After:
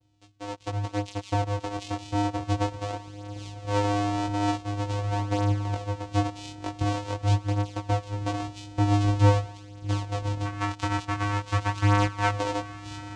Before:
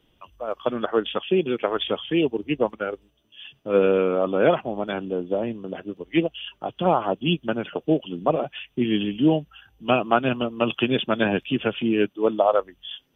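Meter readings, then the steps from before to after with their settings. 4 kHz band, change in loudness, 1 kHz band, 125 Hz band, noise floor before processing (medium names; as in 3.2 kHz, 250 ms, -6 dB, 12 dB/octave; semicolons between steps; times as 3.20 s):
no reading, -4.0 dB, -1.5 dB, +8.5 dB, -65 dBFS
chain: bit-reversed sample order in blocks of 32 samples; compression 2:1, threshold -26 dBFS, peak gain reduction 8 dB; time-frequency box 10.45–12.30 s, 1.1–3.2 kHz +12 dB; treble shelf 2.3 kHz +10.5 dB; on a send: echo that smears into a reverb 1225 ms, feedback 46%, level -14 dB; on the sum: vibrato 1.4 Hz 77 cents; level rider gain up to 8 dB; vocoder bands 4, square 102 Hz; chorus 0.23 Hz, delay 16.5 ms, depth 6.2 ms; dynamic bell 960 Hz, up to +6 dB, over -46 dBFS, Q 1.1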